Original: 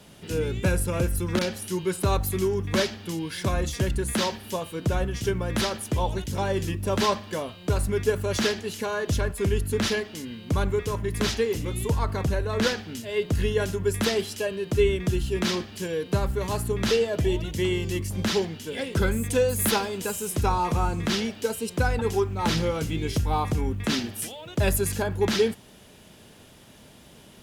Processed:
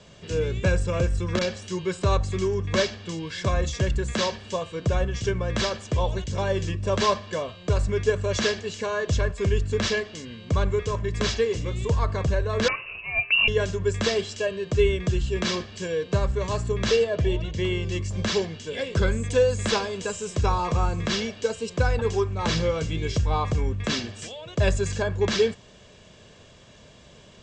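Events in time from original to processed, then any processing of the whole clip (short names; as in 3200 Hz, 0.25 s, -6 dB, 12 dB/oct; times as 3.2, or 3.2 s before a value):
12.68–13.48 inverted band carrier 2800 Hz
17.04–17.92 air absorption 79 m
whole clip: steep low-pass 7900 Hz 72 dB/oct; comb 1.8 ms, depth 42%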